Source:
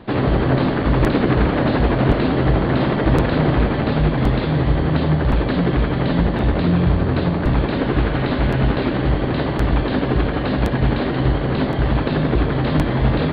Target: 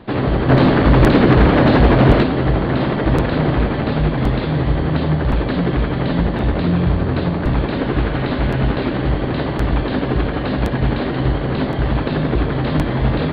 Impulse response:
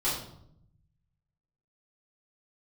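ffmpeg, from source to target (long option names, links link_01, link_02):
-filter_complex "[0:a]asplit=3[link_01][link_02][link_03];[link_01]afade=type=out:start_time=0.48:duration=0.02[link_04];[link_02]acontrast=72,afade=type=in:start_time=0.48:duration=0.02,afade=type=out:start_time=2.22:duration=0.02[link_05];[link_03]afade=type=in:start_time=2.22:duration=0.02[link_06];[link_04][link_05][link_06]amix=inputs=3:normalize=0"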